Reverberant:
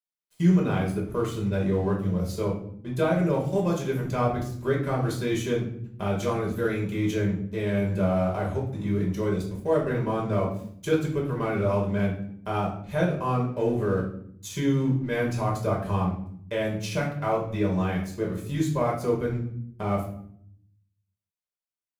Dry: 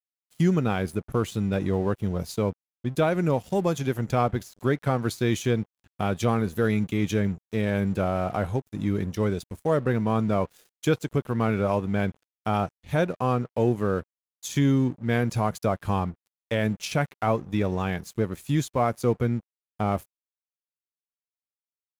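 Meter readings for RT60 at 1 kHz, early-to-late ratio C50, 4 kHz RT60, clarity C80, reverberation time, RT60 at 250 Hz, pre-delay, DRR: 0.55 s, 6.0 dB, 0.45 s, 10.5 dB, 0.60 s, 1.1 s, 5 ms, -2.5 dB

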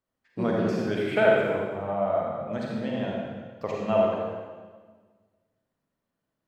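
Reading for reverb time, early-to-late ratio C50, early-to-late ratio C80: 1.5 s, -2.0 dB, 1.0 dB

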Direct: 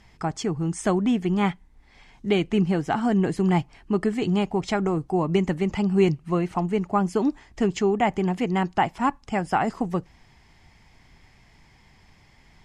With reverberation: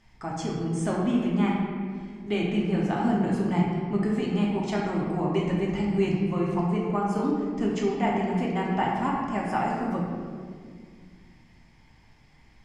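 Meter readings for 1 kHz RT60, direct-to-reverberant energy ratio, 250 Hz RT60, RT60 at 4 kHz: 1.7 s, -4.0 dB, 2.9 s, 1.2 s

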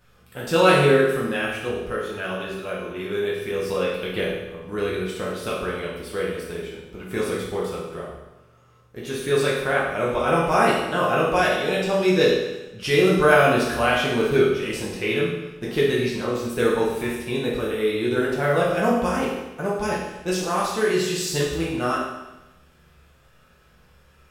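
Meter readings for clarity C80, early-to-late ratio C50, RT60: 4.5 dB, 2.0 dB, 1.0 s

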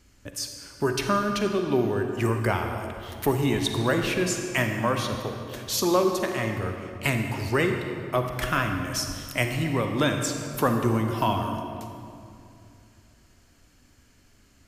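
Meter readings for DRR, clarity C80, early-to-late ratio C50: 4.5 dB, 5.5 dB, 5.0 dB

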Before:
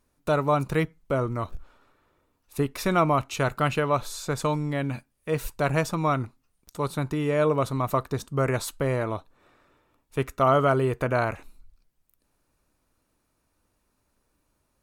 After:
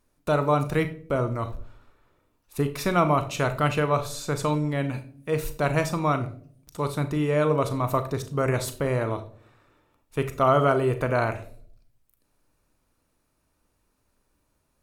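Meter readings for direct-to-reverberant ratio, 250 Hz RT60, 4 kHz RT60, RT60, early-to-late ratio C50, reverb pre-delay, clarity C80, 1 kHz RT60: 9.0 dB, 0.80 s, 0.35 s, 0.55 s, 13.5 dB, 34 ms, 17.0 dB, 0.40 s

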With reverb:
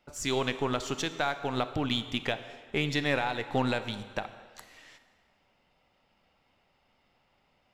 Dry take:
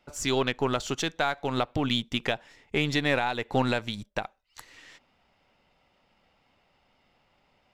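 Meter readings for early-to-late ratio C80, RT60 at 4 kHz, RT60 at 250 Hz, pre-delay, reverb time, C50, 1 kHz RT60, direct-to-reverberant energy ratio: 13.0 dB, 1.5 s, 1.7 s, 27 ms, 1.8 s, 11.5 dB, 1.8 s, 11.0 dB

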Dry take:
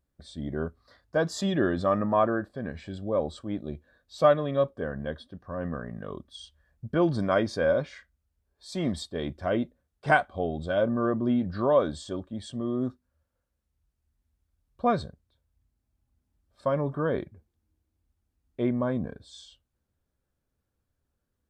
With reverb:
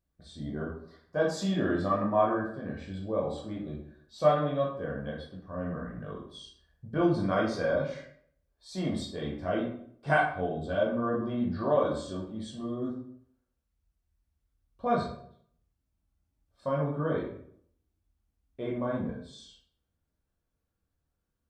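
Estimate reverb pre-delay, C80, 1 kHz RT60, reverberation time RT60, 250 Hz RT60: 12 ms, 8.5 dB, 0.55 s, 0.60 s, 0.70 s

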